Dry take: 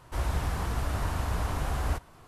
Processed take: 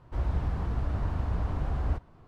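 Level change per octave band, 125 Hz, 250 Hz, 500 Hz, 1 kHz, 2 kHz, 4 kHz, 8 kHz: +1.0 dB, +0.5 dB, -3.0 dB, -6.0 dB, -8.5 dB, -12.5 dB, under -20 dB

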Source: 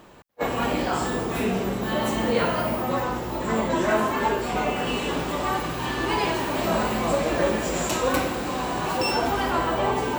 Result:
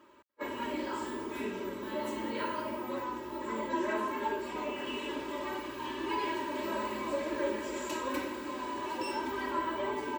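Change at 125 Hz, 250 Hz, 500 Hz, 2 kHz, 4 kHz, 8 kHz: -22.5, -10.0, -11.0, -11.0, -12.0, -15.0 dB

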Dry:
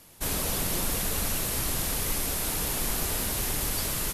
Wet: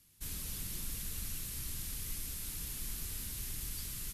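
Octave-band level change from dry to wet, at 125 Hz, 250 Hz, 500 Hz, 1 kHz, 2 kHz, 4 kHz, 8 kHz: -11.0, -16.0, -24.5, -23.5, -16.5, -13.0, -12.0 dB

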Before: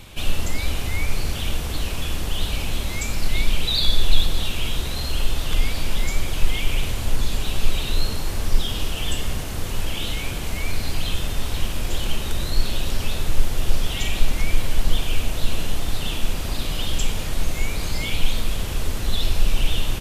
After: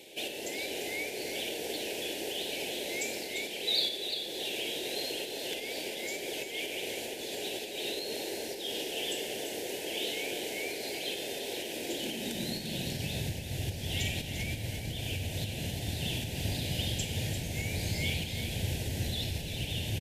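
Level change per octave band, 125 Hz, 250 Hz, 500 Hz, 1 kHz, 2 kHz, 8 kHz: -9.0, -6.0, -1.5, -10.0, -6.0, -6.5 dB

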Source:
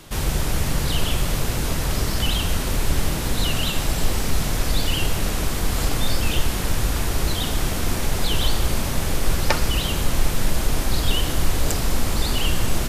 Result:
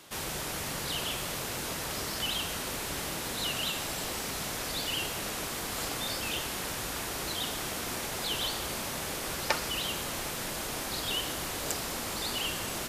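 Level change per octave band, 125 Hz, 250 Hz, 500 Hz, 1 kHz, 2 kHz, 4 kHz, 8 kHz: -19.0, -12.5, -8.5, -7.0, -6.0, -6.0, -6.0 dB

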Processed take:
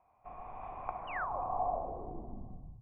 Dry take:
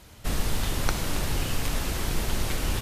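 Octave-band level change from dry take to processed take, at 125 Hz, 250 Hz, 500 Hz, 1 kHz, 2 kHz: -20.5, -16.5, -5.5, +0.5, -11.5 dB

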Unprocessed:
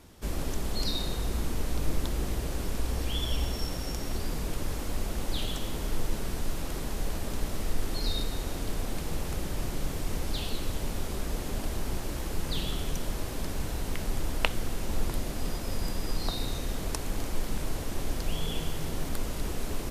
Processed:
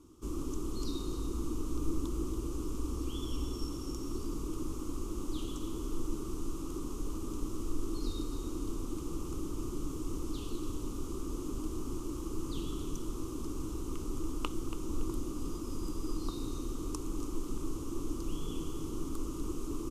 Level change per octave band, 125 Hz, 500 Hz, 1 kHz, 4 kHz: -7.0, -4.0, -7.5, -13.0 dB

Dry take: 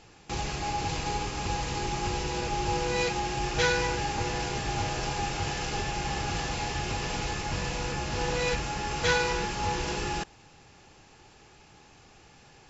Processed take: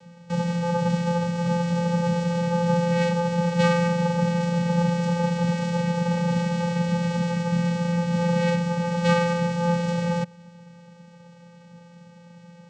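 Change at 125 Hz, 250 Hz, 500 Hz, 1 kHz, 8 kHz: +11.0 dB, +14.0 dB, +7.5 dB, +2.0 dB, n/a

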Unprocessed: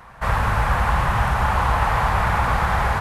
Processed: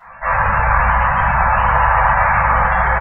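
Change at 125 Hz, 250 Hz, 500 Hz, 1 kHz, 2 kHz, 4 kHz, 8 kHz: +0.5 dB, -0.5 dB, +5.0 dB, +7.0 dB, +8.5 dB, n/a, under -40 dB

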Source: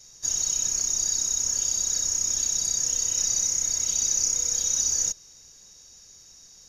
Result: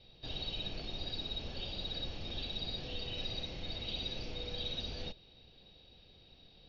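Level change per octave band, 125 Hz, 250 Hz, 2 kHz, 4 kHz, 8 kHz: +3.0 dB, n/a, -3.0 dB, -6.0 dB, under -40 dB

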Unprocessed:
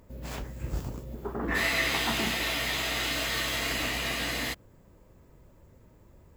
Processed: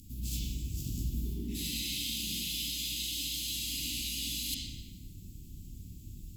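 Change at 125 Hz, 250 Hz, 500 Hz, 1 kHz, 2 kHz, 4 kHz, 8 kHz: -1.0 dB, -5.0 dB, -20.5 dB, under -40 dB, -17.5 dB, -3.0 dB, +0.5 dB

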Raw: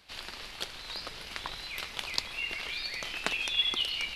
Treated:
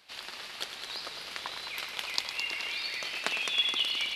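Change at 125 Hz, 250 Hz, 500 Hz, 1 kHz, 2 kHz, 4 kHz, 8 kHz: -9.0, -3.0, -0.5, +1.0, +1.0, +1.0, +1.5 dB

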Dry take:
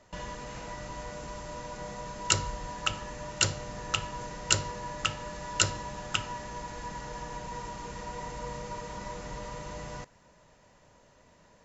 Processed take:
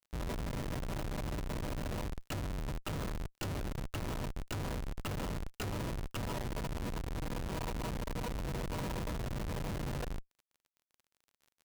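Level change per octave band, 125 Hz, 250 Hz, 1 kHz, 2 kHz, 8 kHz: +1.5 dB, +3.0 dB, -8.0 dB, -9.0 dB, n/a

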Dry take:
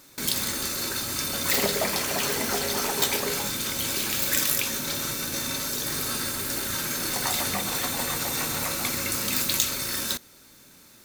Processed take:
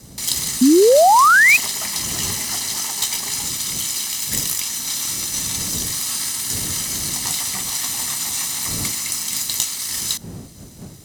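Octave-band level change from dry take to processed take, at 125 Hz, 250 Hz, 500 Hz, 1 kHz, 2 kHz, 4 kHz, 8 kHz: +3.0, +11.0, +12.0, +13.5, +11.0, +4.0, +8.0 dB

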